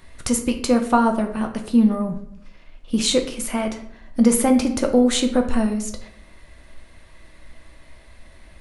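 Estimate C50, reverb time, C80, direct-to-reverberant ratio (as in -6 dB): 9.5 dB, 0.65 s, 13.0 dB, 4.0 dB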